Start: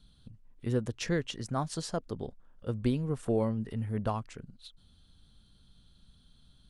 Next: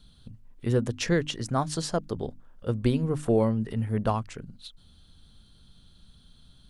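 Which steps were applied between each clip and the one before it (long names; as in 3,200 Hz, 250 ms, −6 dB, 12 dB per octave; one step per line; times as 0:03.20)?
mains-hum notches 50/100/150/200/250/300 Hz
level +6 dB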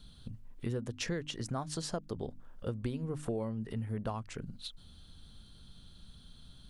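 downward compressor 4 to 1, threshold −36 dBFS, peak gain reduction 15 dB
level +1 dB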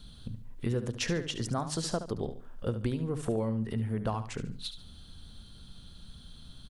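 repeating echo 72 ms, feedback 31%, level −11 dB
level +4.5 dB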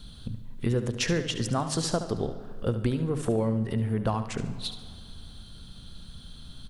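comb and all-pass reverb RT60 2.3 s, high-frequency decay 0.65×, pre-delay 60 ms, DRR 14 dB
level +4.5 dB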